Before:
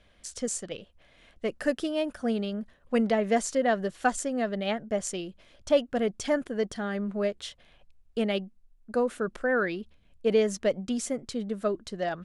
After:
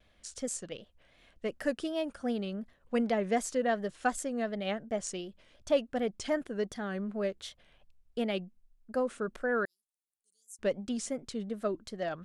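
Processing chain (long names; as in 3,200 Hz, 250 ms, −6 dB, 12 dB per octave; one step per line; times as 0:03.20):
pitch vibrato 2.7 Hz 91 cents
0:09.65–0:10.59: inverse Chebyshev high-pass filter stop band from 2,600 Hz, stop band 60 dB
level −4.5 dB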